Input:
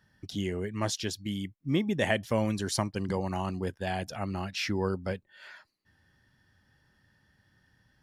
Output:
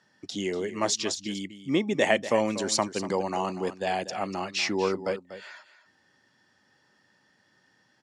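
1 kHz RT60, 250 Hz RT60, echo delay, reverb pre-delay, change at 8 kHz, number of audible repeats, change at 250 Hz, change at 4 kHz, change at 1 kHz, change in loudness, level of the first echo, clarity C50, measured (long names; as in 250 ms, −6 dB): no reverb audible, no reverb audible, 241 ms, no reverb audible, +7.0 dB, 1, +1.0 dB, +5.0 dB, +6.0 dB, +3.5 dB, −13.0 dB, no reverb audible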